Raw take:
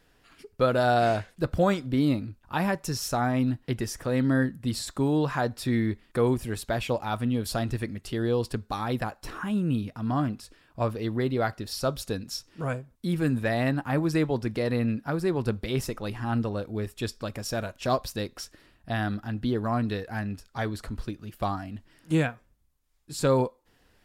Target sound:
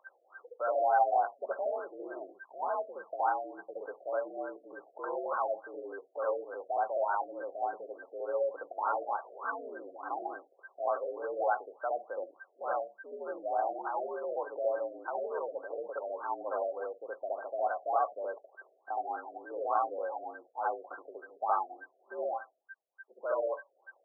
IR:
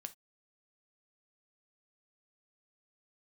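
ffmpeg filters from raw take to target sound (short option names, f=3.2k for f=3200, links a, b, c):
-filter_complex "[0:a]alimiter=limit=-22dB:level=0:latency=1:release=19,aeval=exprs='val(0)+0.00794*sin(2*PI*1500*n/s)':c=same,highpass=f=490:t=q:w=0.5412,highpass=f=490:t=q:w=1.307,lowpass=f=3.4k:t=q:w=0.5176,lowpass=f=3.4k:t=q:w=0.7071,lowpass=f=3.4k:t=q:w=1.932,afreqshift=70,asplit=2[a][b];[1:a]atrim=start_sample=2205,highshelf=f=3.3k:g=-3.5,adelay=69[c];[b][c]afir=irnorm=-1:irlink=0,volume=7.5dB[d];[a][d]amix=inputs=2:normalize=0,afftfilt=real='re*lt(b*sr/1024,710*pow(1600/710,0.5+0.5*sin(2*PI*3.4*pts/sr)))':imag='im*lt(b*sr/1024,710*pow(1600/710,0.5+0.5*sin(2*PI*3.4*pts/sr)))':win_size=1024:overlap=0.75"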